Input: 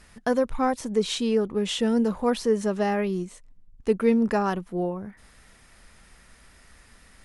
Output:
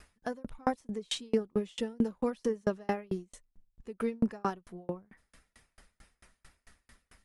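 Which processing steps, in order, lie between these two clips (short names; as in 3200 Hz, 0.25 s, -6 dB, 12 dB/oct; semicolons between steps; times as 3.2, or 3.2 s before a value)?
bin magnitudes rounded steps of 15 dB; dB-ramp tremolo decaying 4.5 Hz, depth 37 dB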